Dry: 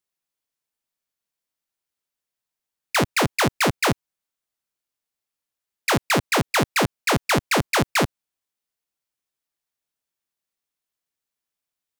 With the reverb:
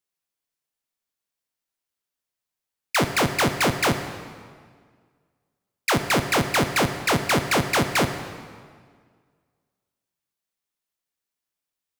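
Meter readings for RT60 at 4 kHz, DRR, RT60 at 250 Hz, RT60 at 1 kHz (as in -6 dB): 1.5 s, 8.0 dB, 1.9 s, 1.8 s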